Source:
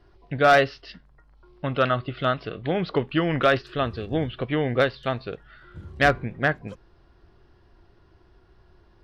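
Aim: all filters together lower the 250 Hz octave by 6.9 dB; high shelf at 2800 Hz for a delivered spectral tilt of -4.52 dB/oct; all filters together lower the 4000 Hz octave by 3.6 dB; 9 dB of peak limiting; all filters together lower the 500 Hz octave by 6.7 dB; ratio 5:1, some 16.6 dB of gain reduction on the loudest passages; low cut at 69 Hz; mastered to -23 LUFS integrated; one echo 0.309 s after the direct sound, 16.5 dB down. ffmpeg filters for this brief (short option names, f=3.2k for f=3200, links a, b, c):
-af "highpass=69,equalizer=f=250:t=o:g=-7.5,equalizer=f=500:t=o:g=-7,highshelf=f=2.8k:g=3.5,equalizer=f=4k:t=o:g=-7.5,acompressor=threshold=-35dB:ratio=5,alimiter=level_in=6dB:limit=-24dB:level=0:latency=1,volume=-6dB,aecho=1:1:309:0.15,volume=19.5dB"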